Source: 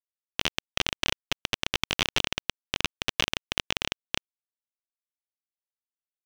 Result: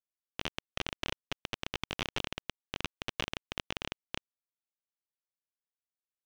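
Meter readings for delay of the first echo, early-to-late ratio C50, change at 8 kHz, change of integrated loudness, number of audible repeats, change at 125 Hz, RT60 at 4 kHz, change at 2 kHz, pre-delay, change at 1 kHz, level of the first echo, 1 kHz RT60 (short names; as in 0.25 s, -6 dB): none, none, -13.0 dB, -10.0 dB, none, -5.5 dB, none, -9.5 dB, none, -7.0 dB, none, none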